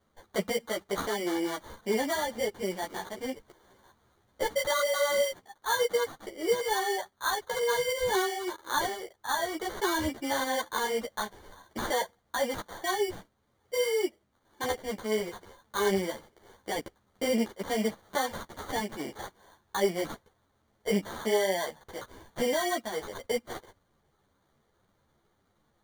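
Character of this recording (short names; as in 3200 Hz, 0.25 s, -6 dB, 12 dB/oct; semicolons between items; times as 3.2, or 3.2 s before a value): aliases and images of a low sample rate 2600 Hz, jitter 0%; a shimmering, thickened sound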